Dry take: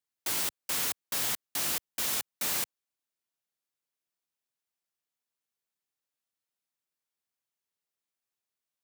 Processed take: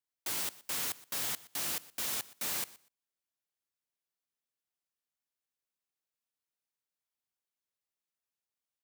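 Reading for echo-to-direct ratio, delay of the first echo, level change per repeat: -20.0 dB, 0.121 s, -15.0 dB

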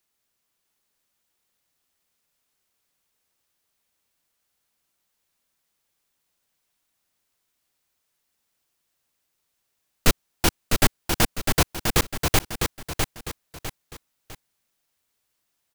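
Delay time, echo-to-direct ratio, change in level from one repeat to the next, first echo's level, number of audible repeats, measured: 0.653 s, -4.5 dB, -9.0 dB, -5.0 dB, 3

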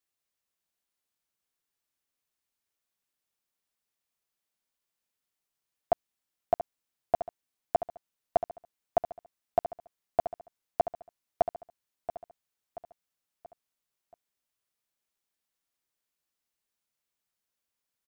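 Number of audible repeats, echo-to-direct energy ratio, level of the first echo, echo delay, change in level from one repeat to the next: 4, -10.0 dB, -11.0 dB, 0.68 s, -7.5 dB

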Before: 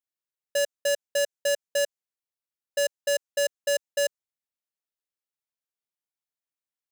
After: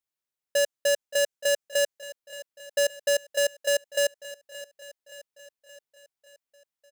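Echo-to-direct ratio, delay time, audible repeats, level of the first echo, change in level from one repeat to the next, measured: -14.5 dB, 0.573 s, 4, -16.0 dB, -5.0 dB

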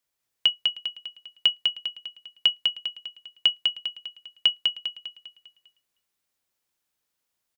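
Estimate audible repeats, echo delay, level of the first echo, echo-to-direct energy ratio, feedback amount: 5, 0.2 s, -3.5 dB, -2.5 dB, 45%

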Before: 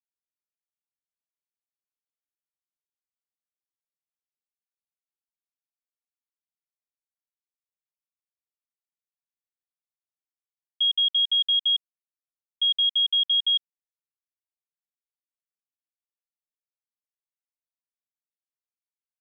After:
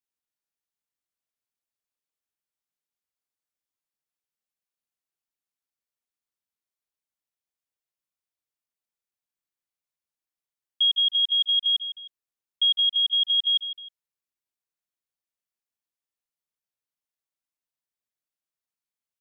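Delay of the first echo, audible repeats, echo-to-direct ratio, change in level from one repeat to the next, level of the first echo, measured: 0.156 s, 2, -11.5 dB, -9.0 dB, -12.0 dB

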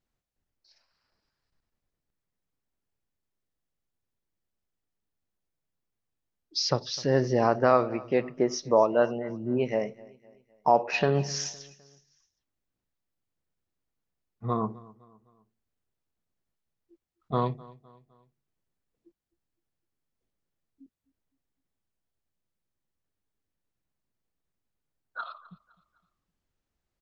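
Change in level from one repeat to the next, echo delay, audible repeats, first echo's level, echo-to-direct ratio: -7.0 dB, 0.256 s, 2, -22.0 dB, -21.0 dB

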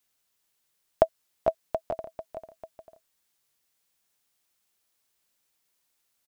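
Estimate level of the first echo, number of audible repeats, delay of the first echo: -10.0 dB, 2, 0.445 s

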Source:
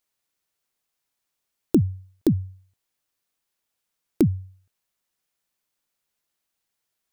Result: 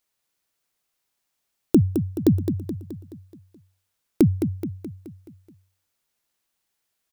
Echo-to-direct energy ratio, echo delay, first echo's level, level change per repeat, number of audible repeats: -6.5 dB, 0.213 s, -8.0 dB, -5.5 dB, 5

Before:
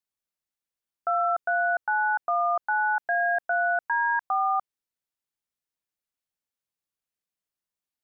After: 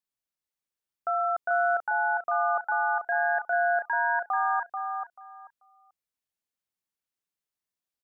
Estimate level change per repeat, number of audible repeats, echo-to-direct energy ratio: -14.5 dB, 3, -5.5 dB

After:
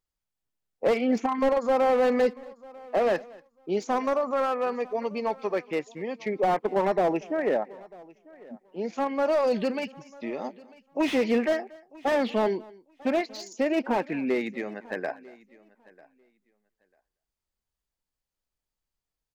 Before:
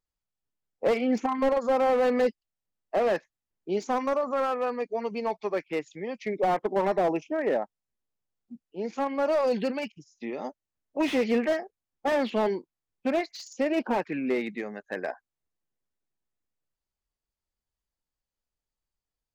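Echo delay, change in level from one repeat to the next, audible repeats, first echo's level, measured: 0.234 s, no steady repeat, 2, -23.0 dB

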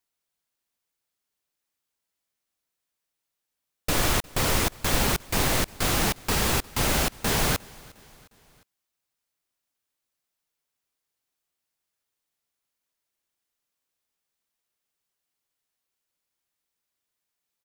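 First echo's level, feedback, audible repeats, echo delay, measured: -24.0 dB, 52%, 2, 0.356 s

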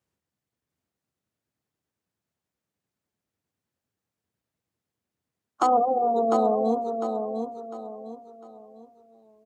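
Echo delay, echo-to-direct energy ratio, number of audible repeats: 0.702 s, -5.5 dB, 4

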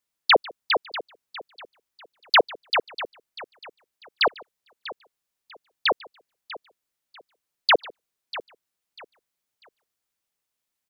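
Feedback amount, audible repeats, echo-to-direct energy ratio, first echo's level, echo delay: no steady repeat, 3, -15.0 dB, -23.5 dB, 0.147 s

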